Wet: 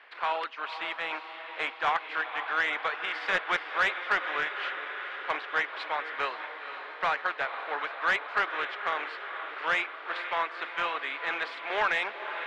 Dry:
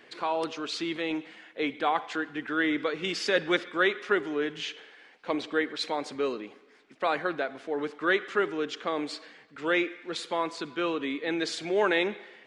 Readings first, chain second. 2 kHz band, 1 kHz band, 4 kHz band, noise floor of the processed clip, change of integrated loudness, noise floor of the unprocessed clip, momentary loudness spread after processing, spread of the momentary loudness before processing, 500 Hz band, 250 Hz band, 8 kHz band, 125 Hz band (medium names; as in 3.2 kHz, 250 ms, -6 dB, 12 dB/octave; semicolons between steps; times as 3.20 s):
+3.0 dB, +2.5 dB, -2.5 dB, -43 dBFS, -1.0 dB, -56 dBFS, 8 LU, 10 LU, -8.5 dB, -18.0 dB, under -10 dB, under -10 dB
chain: spectral contrast reduction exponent 0.57; reverb removal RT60 0.62 s; high-pass 850 Hz 12 dB/octave; distance through air 430 m; echo that smears into a reverb 499 ms, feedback 68%, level -10.5 dB; overdrive pedal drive 17 dB, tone 2.2 kHz, clips at -10.5 dBFS; trim -2 dB